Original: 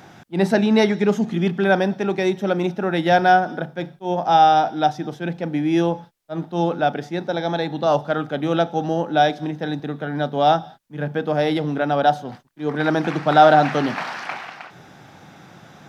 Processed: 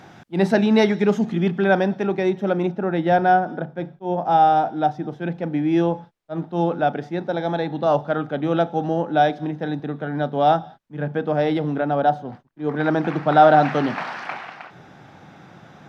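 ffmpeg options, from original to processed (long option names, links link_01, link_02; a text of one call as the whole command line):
ffmpeg -i in.wav -af "asetnsamples=nb_out_samples=441:pad=0,asendcmd='1.32 lowpass f 3000;2.07 lowpass f 1800;2.68 lowpass f 1100;5.19 lowpass f 2000;11.81 lowpass f 1100;12.64 lowpass f 1800;13.54 lowpass f 2800',lowpass=frequency=5400:poles=1" out.wav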